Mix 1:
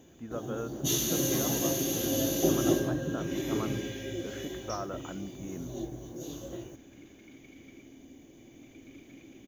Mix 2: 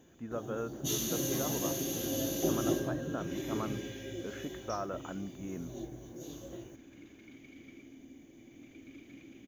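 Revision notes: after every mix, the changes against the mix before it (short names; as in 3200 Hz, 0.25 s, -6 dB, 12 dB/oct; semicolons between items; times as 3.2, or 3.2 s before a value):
first sound -5.0 dB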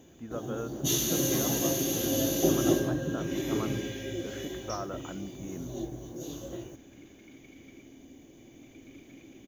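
first sound +6.0 dB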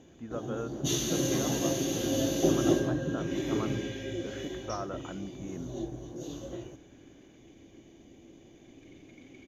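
first sound: add air absorption 55 m; second sound: entry +1.90 s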